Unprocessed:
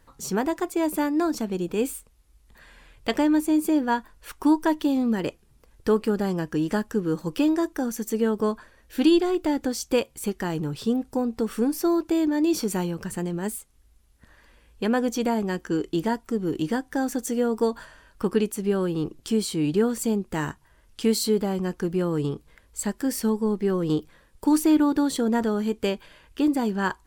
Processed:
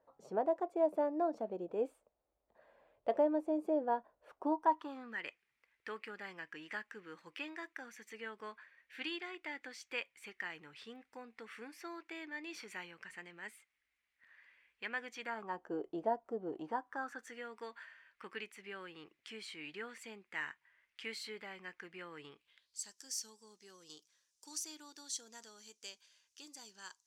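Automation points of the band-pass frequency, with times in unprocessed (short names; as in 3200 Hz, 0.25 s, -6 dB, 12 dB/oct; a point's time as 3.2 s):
band-pass, Q 4.1
4.46 s 620 Hz
5.21 s 2100 Hz
15.2 s 2100 Hz
15.68 s 660 Hz
16.49 s 660 Hz
17.42 s 2100 Hz
22.31 s 2100 Hz
22.86 s 6000 Hz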